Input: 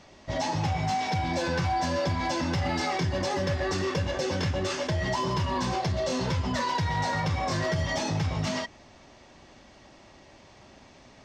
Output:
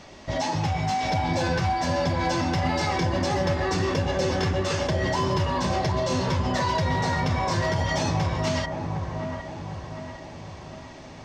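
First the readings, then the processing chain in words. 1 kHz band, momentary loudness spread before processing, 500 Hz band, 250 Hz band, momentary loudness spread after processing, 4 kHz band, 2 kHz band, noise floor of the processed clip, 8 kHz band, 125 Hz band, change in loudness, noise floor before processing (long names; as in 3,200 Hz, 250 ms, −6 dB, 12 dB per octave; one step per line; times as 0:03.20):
+3.5 dB, 2 LU, +4.0 dB, +3.5 dB, 12 LU, +2.0 dB, +2.5 dB, −42 dBFS, +2.0 dB, +3.5 dB, +3.0 dB, −53 dBFS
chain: in parallel at +1.5 dB: downward compressor, threshold −39 dBFS, peak gain reduction 14 dB
on the sum: delay with a low-pass on its return 756 ms, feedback 51%, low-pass 1,400 Hz, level −4.5 dB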